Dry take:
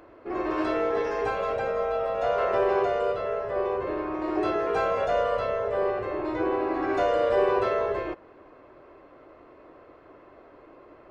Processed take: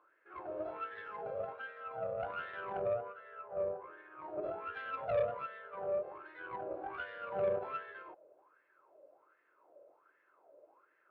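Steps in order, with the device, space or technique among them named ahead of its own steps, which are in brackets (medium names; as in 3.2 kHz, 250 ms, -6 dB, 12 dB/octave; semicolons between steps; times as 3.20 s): 2.88–4.19 s: distance through air 340 m; wah-wah guitar rig (wah-wah 1.3 Hz 580–1800 Hz, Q 9.1; valve stage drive 27 dB, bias 0.55; cabinet simulation 100–4400 Hz, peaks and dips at 250 Hz -8 dB, 710 Hz -9 dB, 1.1 kHz -10 dB, 1.9 kHz -9 dB); trim +5.5 dB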